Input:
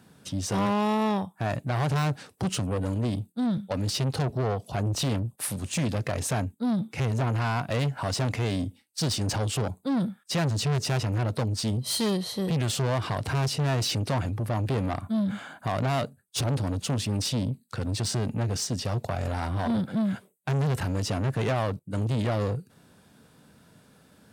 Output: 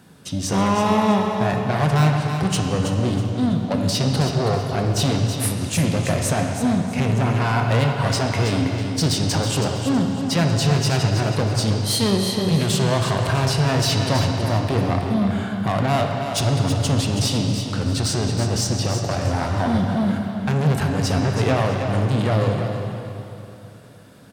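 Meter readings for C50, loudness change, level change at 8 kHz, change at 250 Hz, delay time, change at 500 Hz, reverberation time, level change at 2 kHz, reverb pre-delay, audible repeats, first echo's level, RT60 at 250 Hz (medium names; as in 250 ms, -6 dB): 2.0 dB, +7.5 dB, +7.0 dB, +7.5 dB, 324 ms, +8.0 dB, 3.0 s, +8.0 dB, 6 ms, 3, -8.5 dB, 3.0 s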